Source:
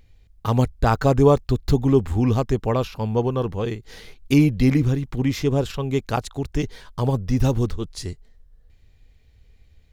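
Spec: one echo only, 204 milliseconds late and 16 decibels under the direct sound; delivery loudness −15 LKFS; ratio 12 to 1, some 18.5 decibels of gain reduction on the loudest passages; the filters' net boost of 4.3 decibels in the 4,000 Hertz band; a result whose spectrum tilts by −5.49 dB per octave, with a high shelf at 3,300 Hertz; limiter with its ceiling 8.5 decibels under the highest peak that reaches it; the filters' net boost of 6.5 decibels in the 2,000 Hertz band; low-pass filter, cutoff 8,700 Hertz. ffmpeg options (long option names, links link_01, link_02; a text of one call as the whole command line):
ffmpeg -i in.wav -af "lowpass=8700,equalizer=frequency=2000:width_type=o:gain=9,highshelf=frequency=3300:gain=-8,equalizer=frequency=4000:width_type=o:gain=8,acompressor=threshold=-29dB:ratio=12,alimiter=level_in=1dB:limit=-24dB:level=0:latency=1,volume=-1dB,aecho=1:1:204:0.158,volume=21.5dB" out.wav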